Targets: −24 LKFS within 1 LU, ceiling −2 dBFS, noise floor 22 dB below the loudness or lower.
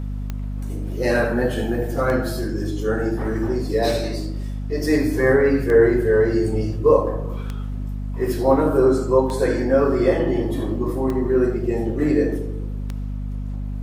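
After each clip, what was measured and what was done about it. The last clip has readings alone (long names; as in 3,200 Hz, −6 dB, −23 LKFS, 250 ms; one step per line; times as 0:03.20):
number of clicks 8; mains hum 50 Hz; hum harmonics up to 250 Hz; level of the hum −24 dBFS; integrated loudness −21.0 LKFS; sample peak −3.0 dBFS; target loudness −24.0 LKFS
→ click removal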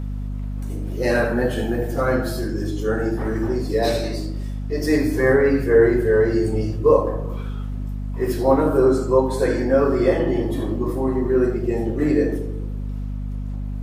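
number of clicks 0; mains hum 50 Hz; hum harmonics up to 250 Hz; level of the hum −24 dBFS
→ hum removal 50 Hz, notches 5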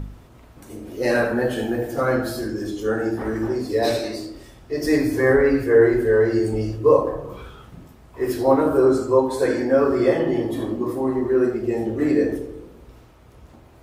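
mains hum none found; integrated loudness −20.5 LKFS; sample peak −4.0 dBFS; target loudness −24.0 LKFS
→ level −3.5 dB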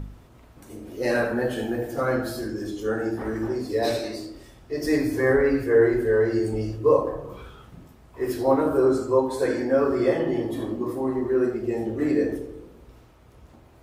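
integrated loudness −24.0 LKFS; sample peak −7.5 dBFS; background noise floor −52 dBFS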